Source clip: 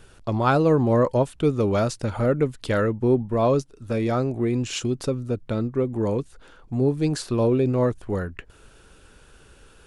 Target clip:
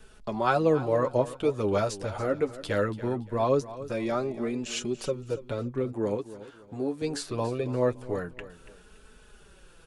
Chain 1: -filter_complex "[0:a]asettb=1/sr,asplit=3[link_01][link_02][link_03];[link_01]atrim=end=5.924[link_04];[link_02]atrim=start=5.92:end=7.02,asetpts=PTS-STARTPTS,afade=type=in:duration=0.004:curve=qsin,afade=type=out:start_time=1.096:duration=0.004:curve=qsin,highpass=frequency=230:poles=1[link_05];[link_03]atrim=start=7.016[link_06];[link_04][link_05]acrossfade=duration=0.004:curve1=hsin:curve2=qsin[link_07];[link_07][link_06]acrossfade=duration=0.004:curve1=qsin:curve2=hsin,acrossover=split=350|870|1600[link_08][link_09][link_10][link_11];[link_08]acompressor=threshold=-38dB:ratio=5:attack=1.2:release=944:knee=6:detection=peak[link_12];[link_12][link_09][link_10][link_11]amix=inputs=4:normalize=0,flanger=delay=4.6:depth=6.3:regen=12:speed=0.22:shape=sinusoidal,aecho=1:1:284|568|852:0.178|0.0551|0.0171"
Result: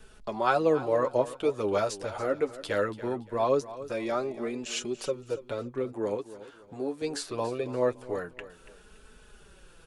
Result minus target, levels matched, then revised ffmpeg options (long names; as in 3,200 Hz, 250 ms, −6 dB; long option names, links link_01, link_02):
downward compressor: peak gain reduction +9 dB
-filter_complex "[0:a]asettb=1/sr,asplit=3[link_01][link_02][link_03];[link_01]atrim=end=5.924[link_04];[link_02]atrim=start=5.92:end=7.02,asetpts=PTS-STARTPTS,afade=type=in:duration=0.004:curve=qsin,afade=type=out:start_time=1.096:duration=0.004:curve=qsin,highpass=frequency=230:poles=1[link_05];[link_03]atrim=start=7.016[link_06];[link_04][link_05]acrossfade=duration=0.004:curve1=hsin:curve2=qsin[link_07];[link_07][link_06]acrossfade=duration=0.004:curve1=qsin:curve2=hsin,acrossover=split=350|870|1600[link_08][link_09][link_10][link_11];[link_08]acompressor=threshold=-27dB:ratio=5:attack=1.2:release=944:knee=6:detection=peak[link_12];[link_12][link_09][link_10][link_11]amix=inputs=4:normalize=0,flanger=delay=4.6:depth=6.3:regen=12:speed=0.22:shape=sinusoidal,aecho=1:1:284|568|852:0.178|0.0551|0.0171"